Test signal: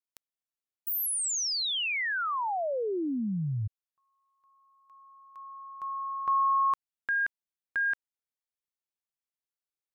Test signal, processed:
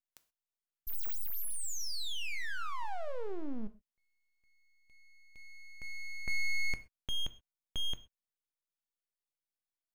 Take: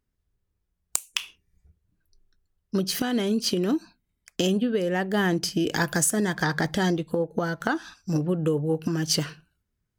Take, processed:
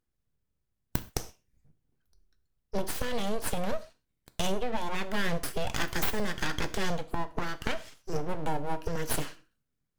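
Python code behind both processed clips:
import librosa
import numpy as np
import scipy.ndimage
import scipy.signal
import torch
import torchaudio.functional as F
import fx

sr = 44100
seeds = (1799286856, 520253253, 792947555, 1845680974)

y = np.abs(x)
y = fx.rev_gated(y, sr, seeds[0], gate_ms=150, shape='falling', drr_db=11.0)
y = y * librosa.db_to_amplitude(-3.5)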